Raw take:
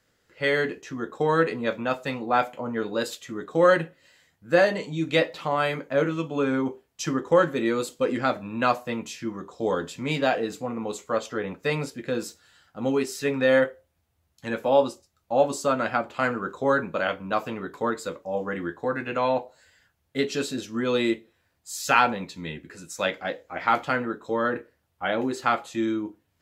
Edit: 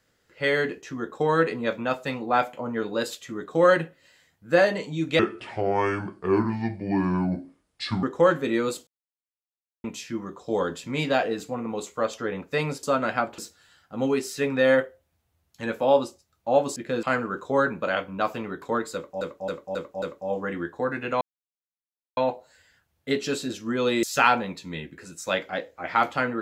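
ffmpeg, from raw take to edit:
-filter_complex "[0:a]asplit=15[a][b][c][d][e][f][g][h][i][j][k][l][m][n][o];[a]atrim=end=5.194[p];[b]atrim=start=5.19:end=7.15,asetpts=PTS-STARTPTS,asetrate=30429,aresample=44100[q];[c]atrim=start=7.146:end=7.99,asetpts=PTS-STARTPTS,afade=t=out:st=0.84:d=0.004:c=hsin[r];[d]atrim=start=7.99:end=8.96,asetpts=PTS-STARTPTS,volume=0[s];[e]atrim=start=8.96:end=11.952,asetpts=PTS-STARTPTS,afade=t=in:d=0.004:c=hsin[t];[f]atrim=start=15.598:end=16.152[u];[g]atrim=start=12.218:end=15.602[v];[h]atrim=start=11.948:end=12.222[w];[i]atrim=start=16.148:end=18.332[x];[j]atrim=start=18.058:end=18.332[y];[k]atrim=start=18.058:end=18.332[z];[l]atrim=start=18.058:end=18.332[aa];[m]atrim=start=18.058:end=19.25,asetpts=PTS-STARTPTS,afade=t=out:st=1.188:d=0.004:c=hsin,apad=pad_dur=0.96[ab];[n]atrim=start=19.25:end=21.112,asetpts=PTS-STARTPTS,afade=t=in:d=0.004:c=hsin[ac];[o]atrim=start=21.748[ad];[p][q]acrossfade=d=0.004:c1=hsin:c2=hsin[ae];[r][s][t]concat=n=3:v=0:a=1[af];[ae][af]acrossfade=d=0.004:c1=hsin:c2=hsin[ag];[ag][u]acrossfade=d=0.004:c1=hsin:c2=hsin[ah];[ah][v]acrossfade=d=0.004:c1=hsin:c2=hsin[ai];[ai][w]acrossfade=d=0.004:c1=hsin:c2=hsin[aj];[aj][x]acrossfade=d=0.004:c1=hsin:c2=hsin[ak];[ak][y]acrossfade=d=0.004:c1=hsin:c2=hsin[al];[al][z]acrossfade=d=0.004:c1=hsin:c2=hsin[am];[am][aa]acrossfade=d=0.004:c1=hsin:c2=hsin[an];[ab][ac]concat=n=2:v=0:a=1[ao];[an][ao]acrossfade=d=0.004:c1=hsin:c2=hsin[ap];[ap][ad]acrossfade=d=0.004:c1=hsin:c2=hsin"

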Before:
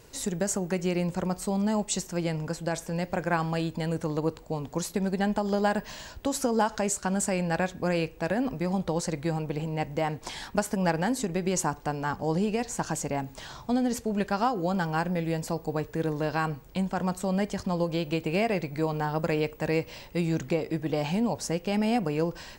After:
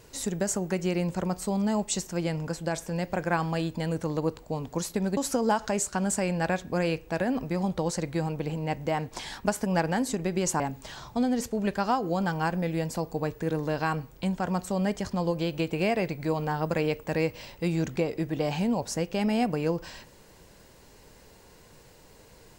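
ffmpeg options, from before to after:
-filter_complex "[0:a]asplit=3[a][b][c];[a]atrim=end=5.172[d];[b]atrim=start=6.268:end=11.702[e];[c]atrim=start=13.128[f];[d][e]acrossfade=d=0.004:c1=hsin:c2=hsin[g];[g][f]acrossfade=d=0.004:c1=hsin:c2=hsin"

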